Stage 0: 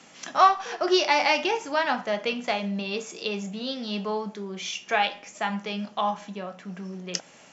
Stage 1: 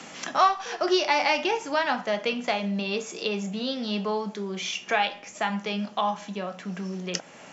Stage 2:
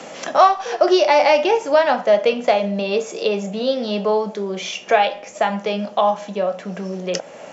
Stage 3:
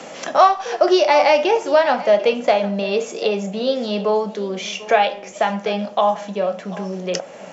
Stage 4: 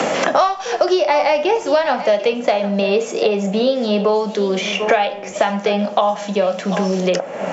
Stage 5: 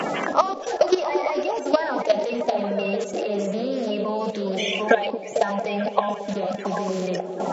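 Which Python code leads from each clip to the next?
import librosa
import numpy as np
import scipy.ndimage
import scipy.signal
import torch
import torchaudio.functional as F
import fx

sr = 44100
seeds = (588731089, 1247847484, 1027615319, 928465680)

y1 = fx.band_squash(x, sr, depth_pct=40)
y2 = fx.peak_eq(y1, sr, hz=560.0, db=12.5, octaves=0.95)
y2 = F.gain(torch.from_numpy(y2), 3.0).numpy()
y3 = y2 + 10.0 ** (-18.0 / 20.0) * np.pad(y2, (int(744 * sr / 1000.0), 0))[:len(y2)]
y4 = fx.band_squash(y3, sr, depth_pct=100)
y5 = fx.spec_quant(y4, sr, step_db=30)
y5 = fx.level_steps(y5, sr, step_db=13)
y5 = fx.echo_stepped(y5, sr, ms=224, hz=290.0, octaves=0.7, feedback_pct=70, wet_db=-4.5)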